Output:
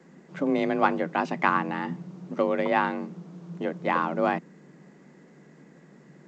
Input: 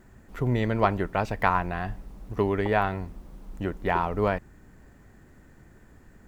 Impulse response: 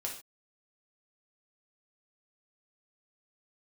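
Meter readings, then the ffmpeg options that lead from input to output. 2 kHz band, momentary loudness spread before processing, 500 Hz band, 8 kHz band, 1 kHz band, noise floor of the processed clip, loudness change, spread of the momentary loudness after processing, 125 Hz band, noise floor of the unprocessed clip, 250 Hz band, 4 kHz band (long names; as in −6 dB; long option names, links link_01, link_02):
+2.0 dB, 12 LU, 0.0 dB, can't be measured, +1.0 dB, −54 dBFS, +0.5 dB, 14 LU, −9.0 dB, −54 dBFS, +2.5 dB, +0.5 dB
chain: -af "afreqshift=140" -ar 16000 -c:a g722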